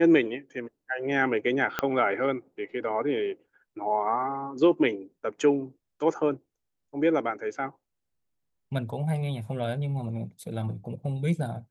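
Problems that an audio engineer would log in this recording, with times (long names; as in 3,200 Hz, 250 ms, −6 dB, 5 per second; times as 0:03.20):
0:01.79: click −11 dBFS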